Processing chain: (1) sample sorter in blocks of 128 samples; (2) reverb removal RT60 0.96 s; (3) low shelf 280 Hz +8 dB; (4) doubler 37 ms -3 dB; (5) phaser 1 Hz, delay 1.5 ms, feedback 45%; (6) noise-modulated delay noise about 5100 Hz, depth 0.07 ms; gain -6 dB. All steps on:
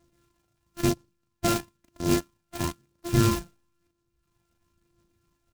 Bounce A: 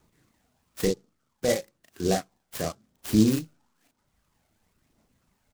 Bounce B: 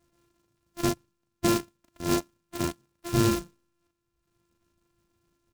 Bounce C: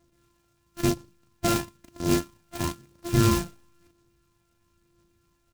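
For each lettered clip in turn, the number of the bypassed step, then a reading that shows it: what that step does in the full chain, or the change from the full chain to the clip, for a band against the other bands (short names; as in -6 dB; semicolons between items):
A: 1, 500 Hz band +4.5 dB; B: 5, 125 Hz band -3.0 dB; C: 2, momentary loudness spread change +7 LU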